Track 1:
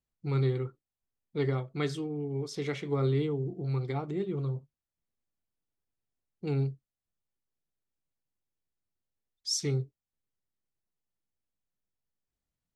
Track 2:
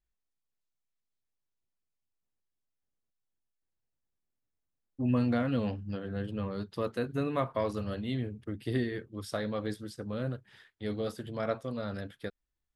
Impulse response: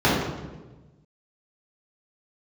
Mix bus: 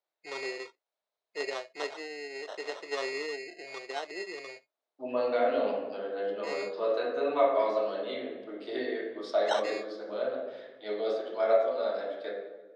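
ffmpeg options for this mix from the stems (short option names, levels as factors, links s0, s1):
-filter_complex "[0:a]acrusher=samples=19:mix=1:aa=0.000001,volume=0.841,asplit=2[s0][s1];[1:a]volume=0.501,asplit=2[s2][s3];[s3]volume=0.2[s4];[s1]apad=whole_len=562563[s5];[s2][s5]sidechaincompress=threshold=0.00631:ratio=8:attack=16:release=275[s6];[2:a]atrim=start_sample=2205[s7];[s4][s7]afir=irnorm=-1:irlink=0[s8];[s0][s6][s8]amix=inputs=3:normalize=0,highpass=f=430:w=0.5412,highpass=f=430:w=1.3066,equalizer=f=640:t=q:w=4:g=10,equalizer=f=2200:t=q:w=4:g=6,equalizer=f=4000:t=q:w=4:g=6,lowpass=f=6600:w=0.5412,lowpass=f=6600:w=1.3066"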